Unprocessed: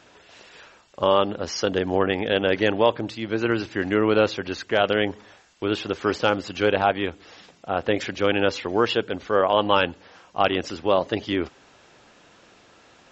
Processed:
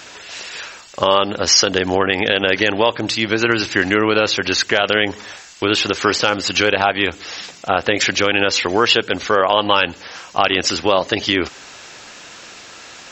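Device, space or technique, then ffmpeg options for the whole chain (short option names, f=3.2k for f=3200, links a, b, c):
mastering chain: -af "equalizer=f=3.3k:t=o:w=0.48:g=-3,acompressor=threshold=-25dB:ratio=2,tiltshelf=f=1.5k:g=-7,alimiter=level_in=16dB:limit=-1dB:release=50:level=0:latency=1,volume=-1dB"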